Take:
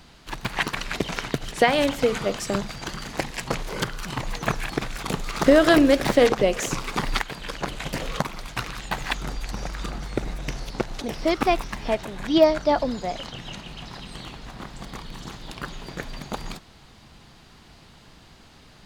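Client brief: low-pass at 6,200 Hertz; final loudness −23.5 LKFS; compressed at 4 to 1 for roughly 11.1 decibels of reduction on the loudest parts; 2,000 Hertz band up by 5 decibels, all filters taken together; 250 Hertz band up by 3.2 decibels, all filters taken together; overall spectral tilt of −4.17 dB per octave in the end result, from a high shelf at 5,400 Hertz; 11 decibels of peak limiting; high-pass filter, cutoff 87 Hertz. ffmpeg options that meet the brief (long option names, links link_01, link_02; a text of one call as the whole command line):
ffmpeg -i in.wav -af "highpass=87,lowpass=6200,equalizer=frequency=250:width_type=o:gain=4,equalizer=frequency=2000:width_type=o:gain=5.5,highshelf=frequency=5400:gain=4,acompressor=threshold=-23dB:ratio=4,volume=7.5dB,alimiter=limit=-9.5dB:level=0:latency=1" out.wav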